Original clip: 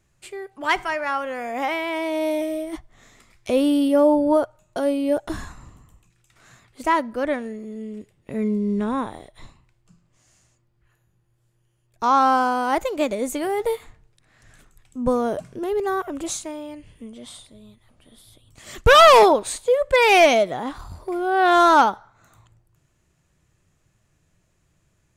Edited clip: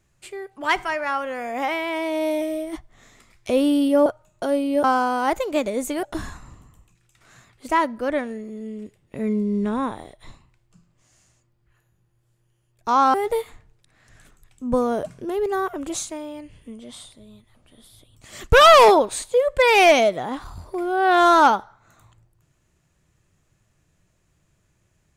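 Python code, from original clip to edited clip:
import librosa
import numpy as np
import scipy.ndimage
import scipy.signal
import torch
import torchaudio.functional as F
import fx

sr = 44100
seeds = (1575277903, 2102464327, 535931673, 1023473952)

y = fx.edit(x, sr, fx.cut(start_s=4.06, length_s=0.34),
    fx.move(start_s=12.29, length_s=1.19, to_s=5.18), tone=tone)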